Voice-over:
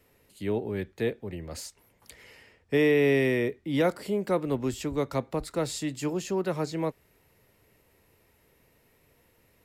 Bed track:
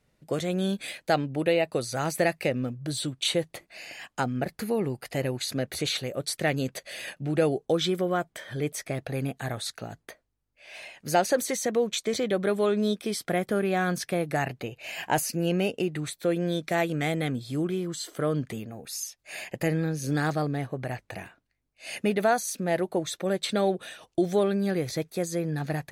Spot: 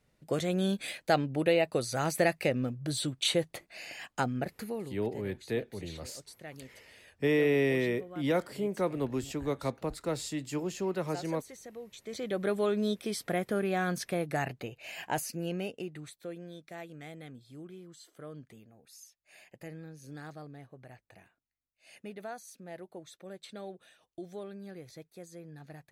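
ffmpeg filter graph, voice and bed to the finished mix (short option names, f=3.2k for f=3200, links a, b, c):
-filter_complex "[0:a]adelay=4500,volume=-4dB[a];[1:a]volume=13.5dB,afade=t=out:st=4.17:d=0.85:silence=0.125893,afade=t=in:st=11.99:d=0.47:silence=0.16788,afade=t=out:st=14.46:d=2.03:silence=0.199526[b];[a][b]amix=inputs=2:normalize=0"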